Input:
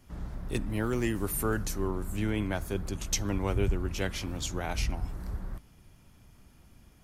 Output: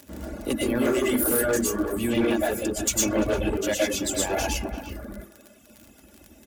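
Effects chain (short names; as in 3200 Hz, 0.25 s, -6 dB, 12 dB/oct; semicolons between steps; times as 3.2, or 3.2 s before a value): fifteen-band EQ 400 Hz +10 dB, 2500 Hz +4 dB, 6300 Hz +4 dB; reverb RT60 0.45 s, pre-delay 85 ms, DRR -4 dB; reverb removal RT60 1.3 s; crackle 32/s -34 dBFS; speed mistake 44.1 kHz file played as 48 kHz; speakerphone echo 0.34 s, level -12 dB; soft clip -16.5 dBFS, distortion -16 dB; HPF 61 Hz 24 dB/oct; high shelf 8300 Hz +10.5 dB; small resonant body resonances 250/610/1600 Hz, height 7 dB, ringing for 25 ms; hard clip -18 dBFS, distortion -17 dB; comb 3.5 ms, depth 49%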